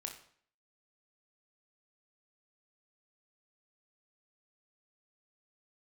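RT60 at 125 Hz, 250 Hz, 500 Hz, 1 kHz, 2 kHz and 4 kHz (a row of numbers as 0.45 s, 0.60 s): 0.55 s, 0.60 s, 0.55 s, 0.55 s, 0.55 s, 0.50 s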